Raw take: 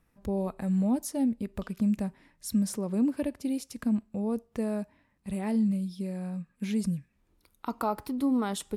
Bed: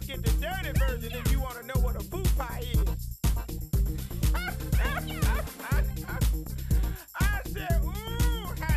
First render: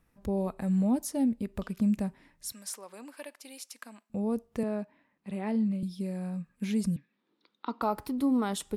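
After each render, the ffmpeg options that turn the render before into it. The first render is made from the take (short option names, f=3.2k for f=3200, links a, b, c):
-filter_complex "[0:a]asettb=1/sr,asplit=3[a][b][c];[a]atrim=end=2.524[d];[b]atrim=start=2.52:end=4.1,asetpts=PTS-STARTPTS,afade=t=in:d=0.004:c=qsin,afade=t=out:st=1.576:d=0.004:c=qsin,highpass=950[e];[c]atrim=start=4.096[f];[d][e]acrossfade=d=0.004:c1=hsin:c2=qsin[g];[g][f]acrossfade=d=0.004:c1=qsin:c2=hsin,asettb=1/sr,asplit=3[h][i][j];[h]atrim=end=4.634[k];[i]atrim=start=4.63:end=5.83,asetpts=PTS-STARTPTS,afade=t=in:d=0.004:c=qsin,afade=t=out:st=1.196:d=0.004:c=qsin,acrossover=split=160 4300:gain=0.0708 1 0.224[l][m][n];[l][m][n]amix=inputs=3:normalize=0[o];[j]atrim=start=5.826[p];[k][o]acrossfade=d=0.004:c1=hsin:c2=qsin[q];[q][p]acrossfade=d=0.004:c1=qsin:c2=hsin,asettb=1/sr,asplit=3[r][s][t];[r]atrim=end=6.964[u];[s]atrim=start=6.96:end=7.82,asetpts=PTS-STARTPTS,afade=t=in:d=0.004:c=qsin,afade=t=out:st=0.856:d=0.004:c=qsin,highpass=f=210:w=0.5412,highpass=f=210:w=1.3066,equalizer=f=660:t=q:w=4:g=-6,equalizer=f=2.5k:t=q:w=4:g=-3,equalizer=f=3.7k:t=q:w=4:g=6,lowpass=f=4.5k:w=0.5412,lowpass=f=4.5k:w=1.3066[v];[t]atrim=start=7.816[w];[u][v]acrossfade=d=0.004:c1=hsin:c2=qsin[x];[x][w]acrossfade=d=0.004:c1=qsin:c2=hsin"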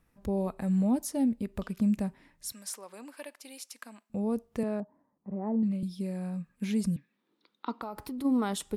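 -filter_complex "[0:a]asettb=1/sr,asplit=3[a][b][c];[a]atrim=end=4.804[d];[b]atrim=start=4.8:end=5.63,asetpts=PTS-STARTPTS,afade=t=in:d=0.004:c=qsin,afade=t=out:st=0.826:d=0.004:c=qsin,lowpass=f=1.1k:w=0.5412,lowpass=f=1.1k:w=1.3066[e];[c]atrim=start=5.626[f];[d][e]acrossfade=d=0.004:c1=hsin:c2=qsin[g];[g][f]acrossfade=d=0.004:c1=qsin:c2=hsin,asplit=3[h][i][j];[h]afade=t=out:st=7.73:d=0.02[k];[i]acompressor=threshold=-34dB:ratio=6:attack=3.2:release=140:knee=1:detection=peak,afade=t=in:st=7.73:d=0.02,afade=t=out:st=8.24:d=0.02[l];[j]afade=t=in:st=8.24:d=0.02[m];[k][l][m]amix=inputs=3:normalize=0"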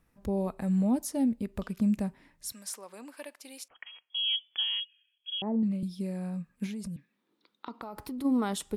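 -filter_complex "[0:a]asettb=1/sr,asplit=3[a][b][c];[a]atrim=end=3.684[d];[b]atrim=start=3.68:end=5.42,asetpts=PTS-STARTPTS,afade=t=in:d=0.004:c=qsin,afade=t=out:st=1.736:d=0.004:c=qsin,lowpass=f=3k:t=q:w=0.5098,lowpass=f=3k:t=q:w=0.6013,lowpass=f=3k:t=q:w=0.9,lowpass=f=3k:t=q:w=2.563,afreqshift=-3500[e];[c]atrim=start=5.416[f];[d][e]acrossfade=d=0.004:c1=hsin:c2=qsin[g];[g][f]acrossfade=d=0.004:c1=qsin:c2=hsin,asettb=1/sr,asplit=3[h][i][j];[h]atrim=end=6.664[k];[i]atrim=start=6.66:end=8.07,asetpts=PTS-STARTPTS,afade=t=in:d=0.004:c=qsin,afade=t=out:st=1.406:d=0.004:c=qsin,acompressor=threshold=-35dB:ratio=6:attack=3.2:release=140:knee=1:detection=peak[l];[j]atrim=start=8.066[m];[k][l]acrossfade=d=0.004:c1=hsin:c2=qsin[n];[n][m]acrossfade=d=0.004:c1=qsin:c2=hsin"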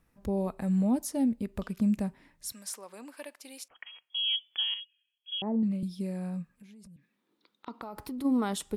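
-filter_complex "[0:a]asplit=3[a][b][c];[a]afade=t=out:st=6.54:d=0.02[d];[b]acompressor=threshold=-51dB:ratio=6:attack=3.2:release=140:knee=1:detection=peak,afade=t=in:st=6.54:d=0.02,afade=t=out:st=7.66:d=0.02[e];[c]afade=t=in:st=7.66:d=0.02[f];[d][e][f]amix=inputs=3:normalize=0,asplit=3[g][h][i];[g]atrim=end=4.742[j];[h]atrim=start=4.738:end=5.302,asetpts=PTS-STARTPTS,volume=-7.5dB[k];[i]atrim=start=5.298[l];[j][k]acrossfade=d=0.004:c1=hsin:c2=hsin[m];[m][l]acrossfade=d=0.004:c1=hsin:c2=hsin"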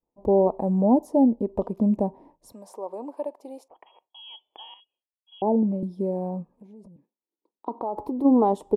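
-af "agate=range=-33dB:threshold=-56dB:ratio=3:detection=peak,firequalizer=gain_entry='entry(140,0);entry(350,14);entry(940,14);entry(1400,-15)':delay=0.05:min_phase=1"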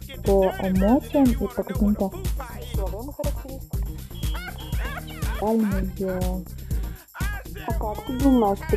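-filter_complex "[1:a]volume=-1.5dB[a];[0:a][a]amix=inputs=2:normalize=0"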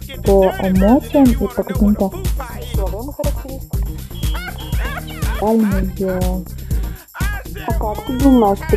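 -af "volume=7.5dB,alimiter=limit=-1dB:level=0:latency=1"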